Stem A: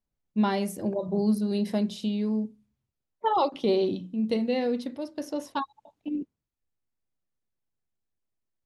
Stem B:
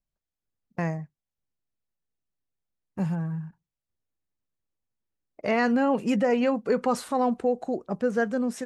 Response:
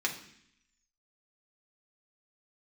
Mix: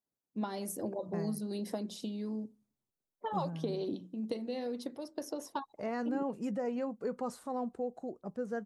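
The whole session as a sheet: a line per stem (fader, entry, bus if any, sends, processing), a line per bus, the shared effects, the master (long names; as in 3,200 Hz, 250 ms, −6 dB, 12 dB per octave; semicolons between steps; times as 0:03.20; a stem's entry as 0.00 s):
+1.5 dB, 0.00 s, no send, high-pass filter 180 Hz 12 dB per octave; harmonic and percussive parts rebalanced harmonic −10 dB; downward compressor, threshold −33 dBFS, peak gain reduction 10.5 dB
−11.5 dB, 0.35 s, no send, no processing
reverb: not used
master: parametric band 2,600 Hz −9 dB 1.6 octaves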